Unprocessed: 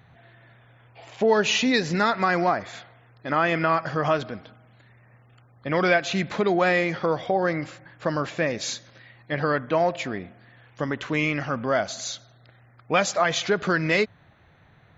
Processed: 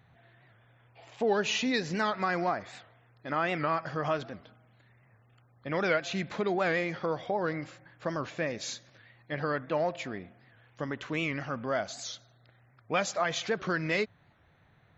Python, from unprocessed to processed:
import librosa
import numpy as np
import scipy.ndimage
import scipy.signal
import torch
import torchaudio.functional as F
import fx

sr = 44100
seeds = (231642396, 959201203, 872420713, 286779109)

y = fx.record_warp(x, sr, rpm=78.0, depth_cents=160.0)
y = F.gain(torch.from_numpy(y), -7.5).numpy()